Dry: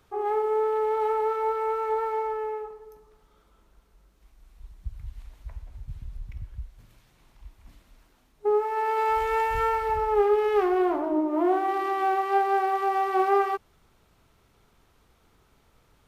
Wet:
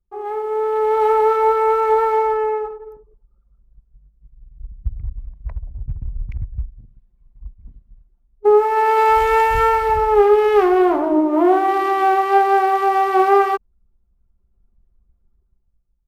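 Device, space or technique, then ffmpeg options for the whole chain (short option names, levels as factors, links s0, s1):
voice memo with heavy noise removal: -af "anlmdn=0.01,dynaudnorm=f=230:g=7:m=3.76"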